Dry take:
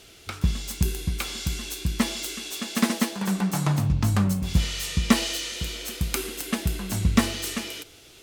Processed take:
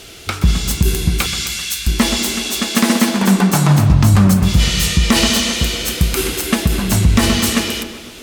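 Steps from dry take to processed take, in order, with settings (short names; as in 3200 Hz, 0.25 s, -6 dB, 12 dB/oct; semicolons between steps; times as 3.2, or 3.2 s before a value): 1.26–1.87 inverse Chebyshev high-pass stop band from 240 Hz, stop band 80 dB; tape echo 0.126 s, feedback 67%, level -11 dB, low-pass 2900 Hz; reverb RT60 1.2 s, pre-delay 0.19 s, DRR 14.5 dB; maximiser +14 dB; gain -1 dB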